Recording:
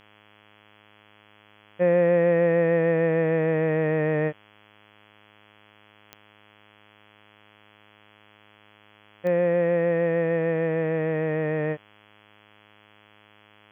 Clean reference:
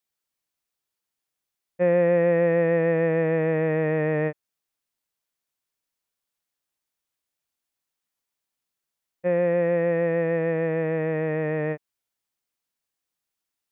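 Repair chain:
click removal
hum removal 104.9 Hz, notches 32

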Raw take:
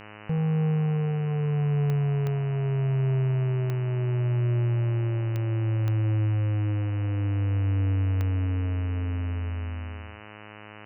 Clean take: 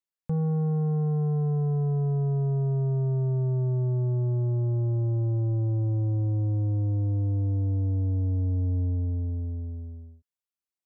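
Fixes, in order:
click removal
hum removal 105.6 Hz, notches 28
echo removal 83 ms −14 dB

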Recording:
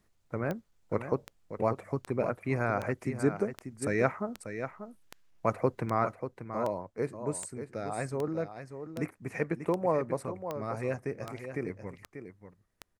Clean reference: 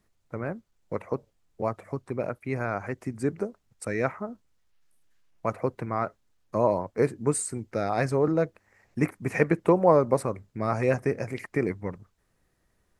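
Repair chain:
click removal
echo removal 589 ms −9.5 dB
level correction +9 dB, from 0:06.15

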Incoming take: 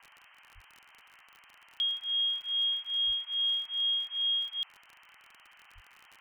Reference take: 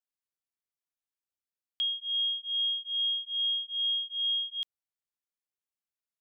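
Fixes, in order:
click removal
0:00.54–0:00.66: high-pass filter 140 Hz 24 dB per octave
0:03.06–0:03.18: high-pass filter 140 Hz 24 dB per octave
0:05.74–0:05.86: high-pass filter 140 Hz 24 dB per octave
noise reduction from a noise print 30 dB

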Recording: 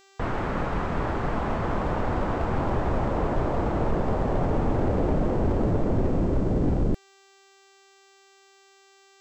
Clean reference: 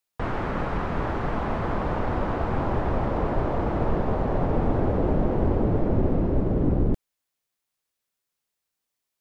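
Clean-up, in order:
clipped peaks rebuilt −17.5 dBFS
hum removal 391.2 Hz, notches 20

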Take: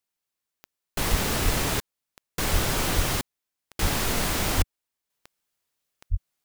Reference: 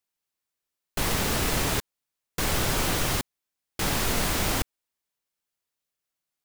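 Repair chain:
click removal
high-pass at the plosives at 0:01.10/0:01.44/0:02.52/0:02.95/0:03.81/0:04.56/0:06.10
level 0 dB, from 0:05.10 −5.5 dB

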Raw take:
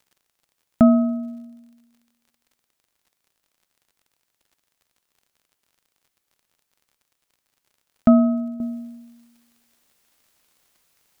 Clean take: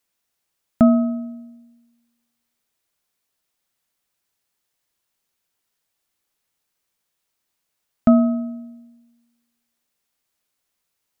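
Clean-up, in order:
click removal
level 0 dB, from 0:08.60 −11 dB

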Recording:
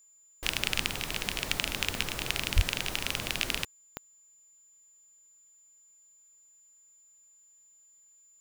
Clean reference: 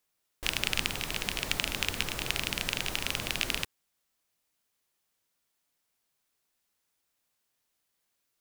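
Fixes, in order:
click removal
notch filter 7,100 Hz, Q 30
0:02.55–0:02.67: high-pass filter 140 Hz 24 dB per octave

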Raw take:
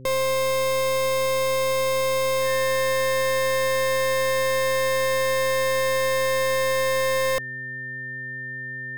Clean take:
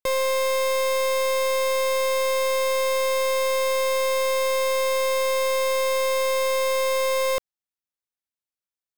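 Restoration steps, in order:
hum removal 129.3 Hz, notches 4
notch filter 1,800 Hz, Q 30

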